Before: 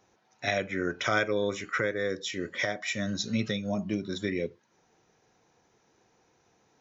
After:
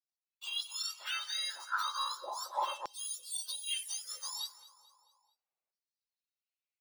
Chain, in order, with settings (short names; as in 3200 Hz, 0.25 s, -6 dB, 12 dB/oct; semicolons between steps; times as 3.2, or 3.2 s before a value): spectrum mirrored in octaves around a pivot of 1400 Hz; gate -57 dBFS, range -27 dB; steep high-pass 400 Hz 36 dB/oct; compressor, threshold -32 dBFS, peak gain reduction 8.5 dB; feedback echo 0.22 s, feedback 46%, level -18 dB; LFO high-pass saw down 0.35 Hz 620–5200 Hz; gain -2.5 dB